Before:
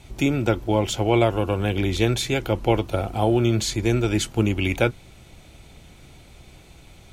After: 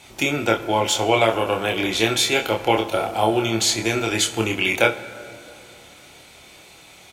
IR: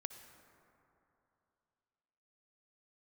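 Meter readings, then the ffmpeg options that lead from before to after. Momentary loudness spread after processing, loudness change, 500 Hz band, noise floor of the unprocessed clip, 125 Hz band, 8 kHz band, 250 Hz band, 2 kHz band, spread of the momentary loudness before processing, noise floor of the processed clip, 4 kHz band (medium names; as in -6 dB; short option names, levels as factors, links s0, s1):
5 LU, +2.0 dB, +2.0 dB, -49 dBFS, -7.5 dB, +7.5 dB, -2.0 dB, +7.5 dB, 4 LU, -47 dBFS, +7.5 dB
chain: -filter_complex "[0:a]highpass=f=760:p=1,aecho=1:1:27|67:0.631|0.141,asplit=2[s0][s1];[1:a]atrim=start_sample=2205[s2];[s1][s2]afir=irnorm=-1:irlink=0,volume=1.58[s3];[s0][s3]amix=inputs=2:normalize=0"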